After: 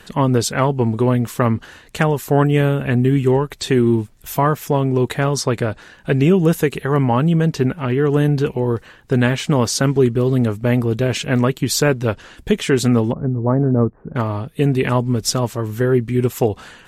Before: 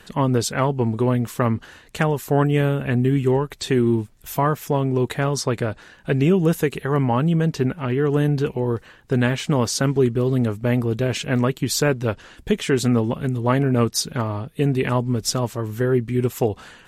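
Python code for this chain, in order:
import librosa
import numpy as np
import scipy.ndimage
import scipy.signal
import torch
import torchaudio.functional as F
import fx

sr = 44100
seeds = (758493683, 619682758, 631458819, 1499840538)

y = fx.gaussian_blur(x, sr, sigma=7.9, at=(13.11, 14.15), fade=0.02)
y = F.gain(torch.from_numpy(y), 3.5).numpy()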